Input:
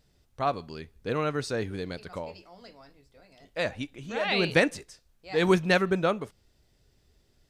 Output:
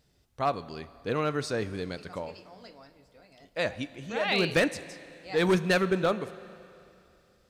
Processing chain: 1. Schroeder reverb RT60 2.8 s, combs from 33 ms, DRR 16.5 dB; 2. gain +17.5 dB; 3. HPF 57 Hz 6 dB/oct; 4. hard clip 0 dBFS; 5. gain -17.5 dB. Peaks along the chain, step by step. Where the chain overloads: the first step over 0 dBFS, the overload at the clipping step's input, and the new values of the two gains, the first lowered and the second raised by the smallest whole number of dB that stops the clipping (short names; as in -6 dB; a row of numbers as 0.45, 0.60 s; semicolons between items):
-7.5, +10.0, +9.5, 0.0, -17.5 dBFS; step 2, 9.5 dB; step 2 +7.5 dB, step 5 -7.5 dB